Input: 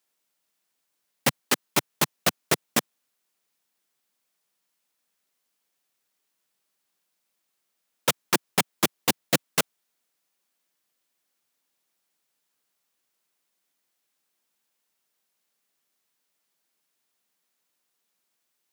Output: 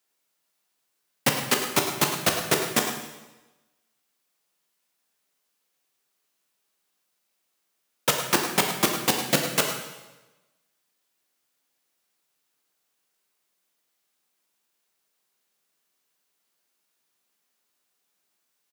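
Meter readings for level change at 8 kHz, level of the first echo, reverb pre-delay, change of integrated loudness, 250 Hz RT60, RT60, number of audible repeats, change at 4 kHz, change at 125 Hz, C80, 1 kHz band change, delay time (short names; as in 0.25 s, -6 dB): +2.0 dB, -10.5 dB, 5 ms, +2.0 dB, 1.1 s, 1.1 s, 1, +2.0 dB, +1.5 dB, 6.0 dB, +2.5 dB, 0.105 s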